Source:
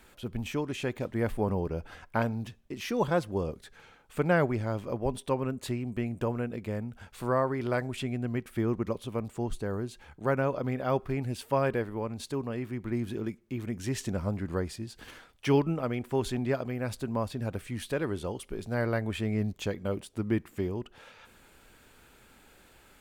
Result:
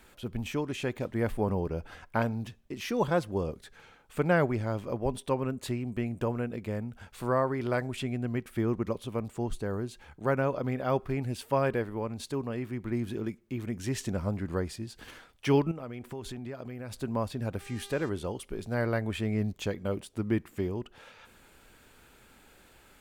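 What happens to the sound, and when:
15.71–16.96 compressor 5:1, threshold -36 dBFS
17.59–18.08 buzz 400 Hz, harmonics 20, -52 dBFS

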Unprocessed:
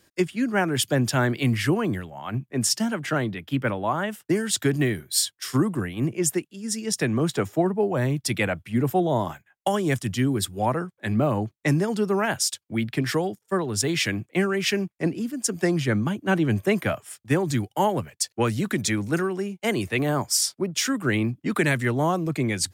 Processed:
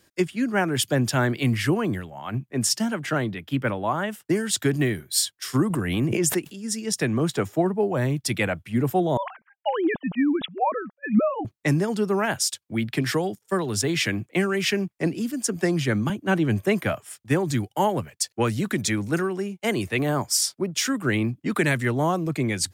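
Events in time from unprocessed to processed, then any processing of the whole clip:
5.7–6.63 backwards sustainer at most 32 dB/s
9.17–11.45 sine-wave speech
12.93–16.1 three-band squash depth 40%

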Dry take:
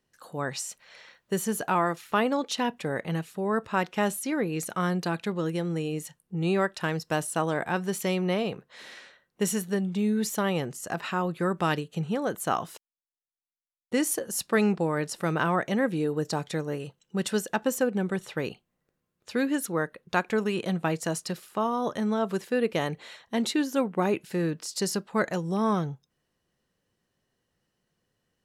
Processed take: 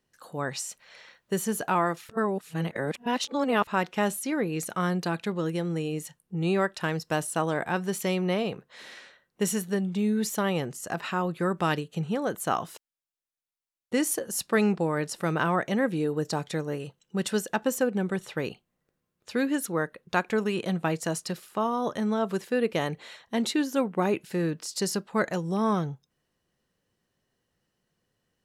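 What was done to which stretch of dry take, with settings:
2.09–3.67 reverse

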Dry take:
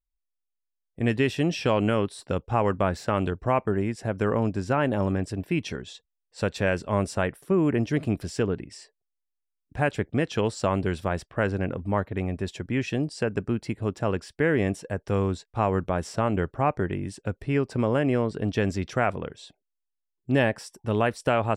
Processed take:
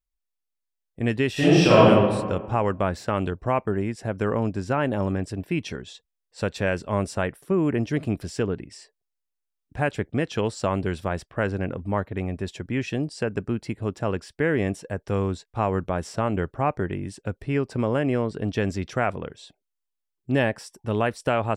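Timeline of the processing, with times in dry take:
1.32–1.82 reverb throw, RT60 1.5 s, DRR -10 dB

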